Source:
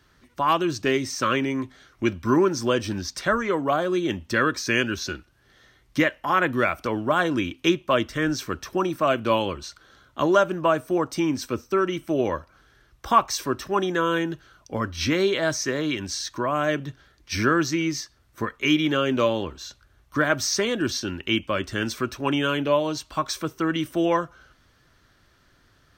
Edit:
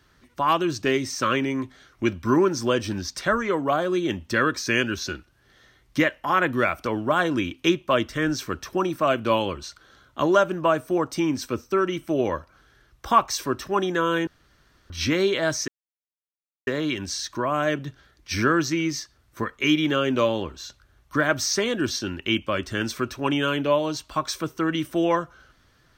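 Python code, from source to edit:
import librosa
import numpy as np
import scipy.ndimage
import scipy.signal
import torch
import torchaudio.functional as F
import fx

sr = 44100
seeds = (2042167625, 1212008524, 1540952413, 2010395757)

y = fx.edit(x, sr, fx.room_tone_fill(start_s=14.27, length_s=0.63),
    fx.insert_silence(at_s=15.68, length_s=0.99), tone=tone)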